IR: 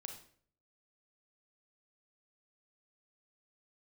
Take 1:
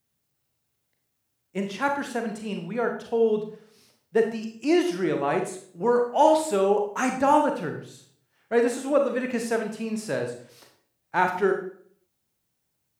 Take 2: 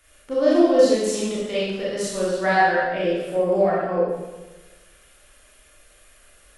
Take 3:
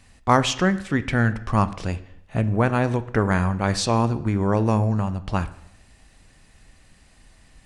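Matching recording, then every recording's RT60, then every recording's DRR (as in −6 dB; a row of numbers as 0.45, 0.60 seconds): 1; 0.55, 1.2, 0.70 seconds; 3.5, −7.5, 12.5 decibels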